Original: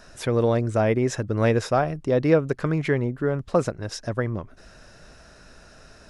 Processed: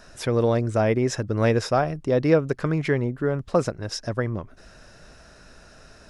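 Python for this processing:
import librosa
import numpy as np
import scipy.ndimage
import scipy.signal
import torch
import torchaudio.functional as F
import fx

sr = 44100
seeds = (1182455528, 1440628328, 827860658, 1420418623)

y = fx.dynamic_eq(x, sr, hz=5200.0, q=4.5, threshold_db=-55.0, ratio=4.0, max_db=5)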